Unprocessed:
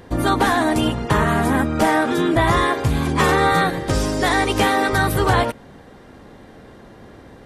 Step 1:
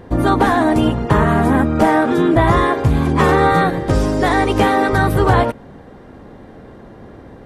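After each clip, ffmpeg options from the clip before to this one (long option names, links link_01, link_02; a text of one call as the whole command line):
ffmpeg -i in.wav -af "highshelf=frequency=2000:gain=-11,volume=5dB" out.wav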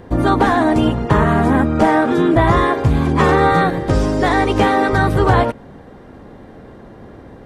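ffmpeg -i in.wav -filter_complex "[0:a]acrossover=split=9000[link_01][link_02];[link_02]acompressor=threshold=-56dB:ratio=4:attack=1:release=60[link_03];[link_01][link_03]amix=inputs=2:normalize=0" out.wav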